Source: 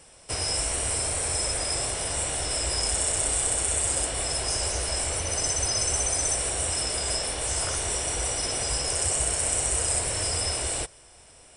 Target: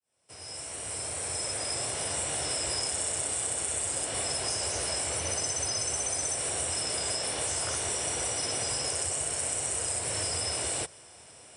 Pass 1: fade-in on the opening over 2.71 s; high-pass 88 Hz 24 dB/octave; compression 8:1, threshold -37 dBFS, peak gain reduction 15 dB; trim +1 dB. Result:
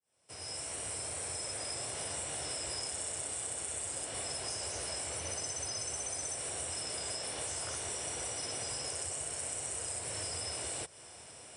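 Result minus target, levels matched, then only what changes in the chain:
compression: peak gain reduction +7.5 dB
change: compression 8:1, threshold -28.5 dBFS, peak gain reduction 7.5 dB

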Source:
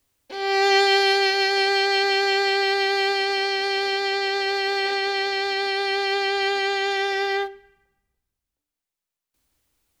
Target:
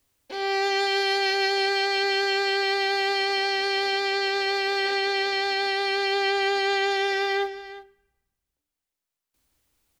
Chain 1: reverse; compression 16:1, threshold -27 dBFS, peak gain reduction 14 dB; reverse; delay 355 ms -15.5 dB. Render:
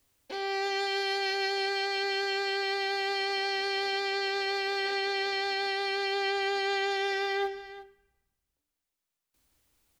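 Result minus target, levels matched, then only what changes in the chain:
compression: peak gain reduction +6.5 dB
change: compression 16:1, threshold -20 dBFS, peak gain reduction 7.5 dB

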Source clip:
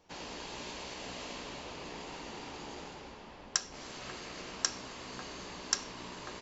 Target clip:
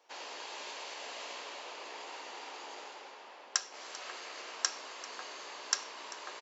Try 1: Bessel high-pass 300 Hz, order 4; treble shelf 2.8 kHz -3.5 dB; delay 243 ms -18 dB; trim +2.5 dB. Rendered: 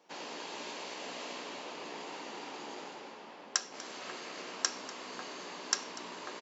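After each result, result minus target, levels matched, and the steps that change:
250 Hz band +11.0 dB; echo 149 ms early
change: Bessel high-pass 620 Hz, order 4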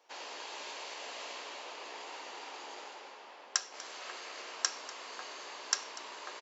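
echo 149 ms early
change: delay 392 ms -18 dB

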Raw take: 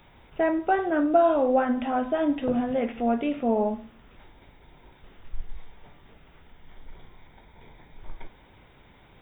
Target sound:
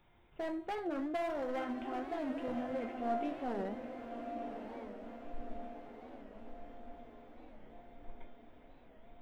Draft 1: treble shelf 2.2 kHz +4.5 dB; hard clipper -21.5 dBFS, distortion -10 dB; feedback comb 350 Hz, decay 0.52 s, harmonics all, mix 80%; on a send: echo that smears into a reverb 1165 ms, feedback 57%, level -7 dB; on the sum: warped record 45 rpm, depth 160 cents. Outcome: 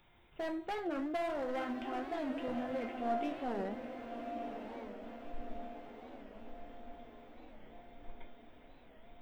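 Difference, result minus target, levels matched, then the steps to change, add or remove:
4 kHz band +3.0 dB
change: treble shelf 2.2 kHz -3.5 dB

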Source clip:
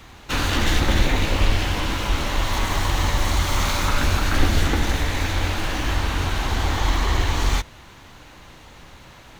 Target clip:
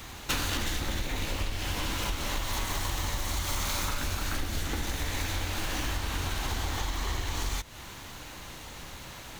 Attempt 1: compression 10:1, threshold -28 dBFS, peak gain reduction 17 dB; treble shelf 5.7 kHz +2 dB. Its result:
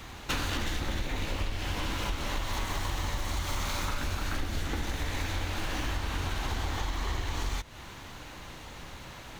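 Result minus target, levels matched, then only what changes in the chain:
8 kHz band -4.5 dB
change: treble shelf 5.7 kHz +11.5 dB

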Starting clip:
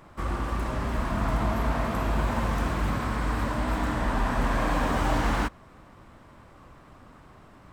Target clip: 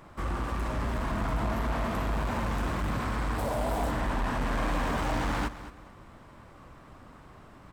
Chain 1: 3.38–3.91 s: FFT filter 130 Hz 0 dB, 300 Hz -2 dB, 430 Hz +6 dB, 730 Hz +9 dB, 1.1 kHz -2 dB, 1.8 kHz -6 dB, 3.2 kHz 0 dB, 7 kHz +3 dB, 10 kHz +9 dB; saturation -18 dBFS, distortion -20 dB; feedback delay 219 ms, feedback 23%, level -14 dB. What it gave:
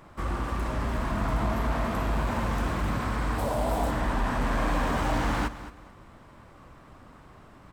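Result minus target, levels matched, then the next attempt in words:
saturation: distortion -8 dB
3.38–3.91 s: FFT filter 130 Hz 0 dB, 300 Hz -2 dB, 430 Hz +6 dB, 730 Hz +9 dB, 1.1 kHz -2 dB, 1.8 kHz -6 dB, 3.2 kHz 0 dB, 7 kHz +3 dB, 10 kHz +9 dB; saturation -24.5 dBFS, distortion -12 dB; feedback delay 219 ms, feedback 23%, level -14 dB

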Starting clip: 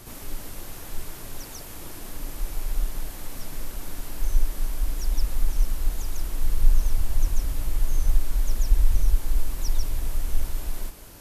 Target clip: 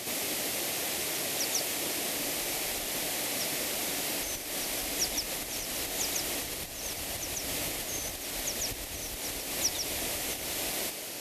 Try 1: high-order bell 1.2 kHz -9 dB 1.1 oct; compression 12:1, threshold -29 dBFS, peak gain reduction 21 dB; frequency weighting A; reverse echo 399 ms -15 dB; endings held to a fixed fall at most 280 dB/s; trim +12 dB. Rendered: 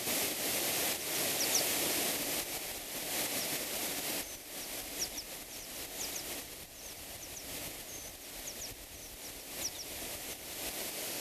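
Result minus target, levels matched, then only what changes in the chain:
compression: peak gain reduction +10 dB
change: compression 12:1, threshold -18 dBFS, peak gain reduction 11 dB

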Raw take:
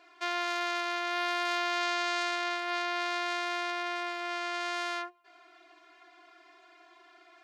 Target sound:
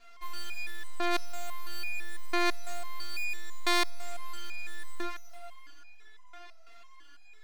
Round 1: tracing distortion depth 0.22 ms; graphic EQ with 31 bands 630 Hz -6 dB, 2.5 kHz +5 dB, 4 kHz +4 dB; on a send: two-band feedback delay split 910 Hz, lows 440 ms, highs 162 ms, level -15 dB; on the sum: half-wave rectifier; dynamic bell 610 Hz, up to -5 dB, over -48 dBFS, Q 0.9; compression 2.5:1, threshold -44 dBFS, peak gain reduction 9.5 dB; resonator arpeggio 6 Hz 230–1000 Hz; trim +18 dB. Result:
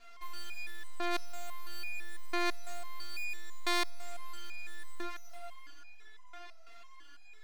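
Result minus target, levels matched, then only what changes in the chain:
compression: peak gain reduction +4.5 dB
change: compression 2.5:1, threshold -36.5 dBFS, peak gain reduction 5 dB

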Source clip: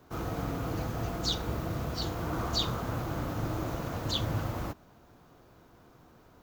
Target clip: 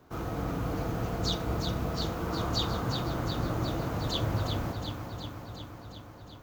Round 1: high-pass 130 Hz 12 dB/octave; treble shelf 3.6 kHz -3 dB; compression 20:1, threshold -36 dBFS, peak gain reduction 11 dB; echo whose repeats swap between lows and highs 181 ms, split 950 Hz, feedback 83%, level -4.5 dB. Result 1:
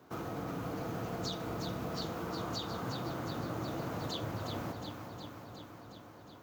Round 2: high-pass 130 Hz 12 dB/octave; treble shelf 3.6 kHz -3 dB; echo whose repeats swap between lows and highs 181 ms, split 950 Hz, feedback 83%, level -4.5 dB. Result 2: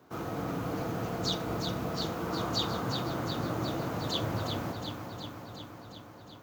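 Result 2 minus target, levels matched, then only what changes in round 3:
125 Hz band -3.0 dB
remove: high-pass 130 Hz 12 dB/octave

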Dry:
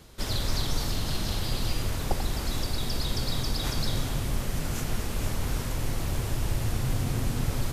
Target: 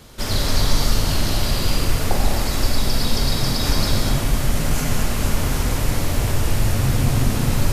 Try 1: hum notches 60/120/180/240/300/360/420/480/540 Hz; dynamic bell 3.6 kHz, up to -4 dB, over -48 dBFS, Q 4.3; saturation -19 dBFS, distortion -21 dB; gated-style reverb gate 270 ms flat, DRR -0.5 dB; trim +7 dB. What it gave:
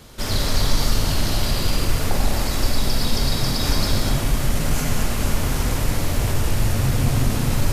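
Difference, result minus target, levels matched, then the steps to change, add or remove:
saturation: distortion +20 dB
change: saturation -7.5 dBFS, distortion -41 dB

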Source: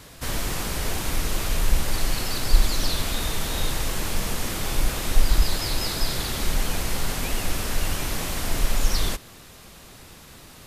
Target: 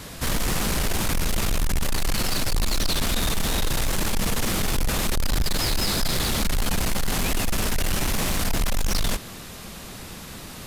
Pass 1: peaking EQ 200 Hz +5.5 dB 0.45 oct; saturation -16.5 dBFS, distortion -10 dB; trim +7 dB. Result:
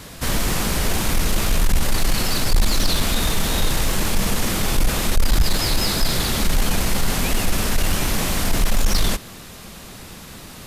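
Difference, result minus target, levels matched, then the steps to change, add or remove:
saturation: distortion -5 dB
change: saturation -25.5 dBFS, distortion -5 dB

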